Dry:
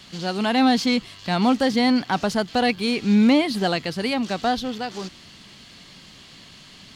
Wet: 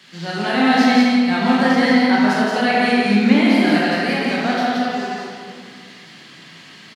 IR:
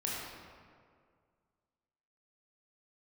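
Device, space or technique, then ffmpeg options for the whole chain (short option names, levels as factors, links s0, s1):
stadium PA: -filter_complex "[0:a]highpass=f=140:w=0.5412,highpass=f=140:w=1.3066,equalizer=f=1800:t=o:w=0.84:g=7.5,aecho=1:1:174.9|227.4:0.708|0.282[s0];[1:a]atrim=start_sample=2205[s1];[s0][s1]afir=irnorm=-1:irlink=0,volume=0.708"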